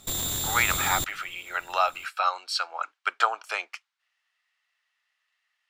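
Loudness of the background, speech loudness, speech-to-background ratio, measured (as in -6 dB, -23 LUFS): -27.5 LUFS, -28.0 LUFS, -0.5 dB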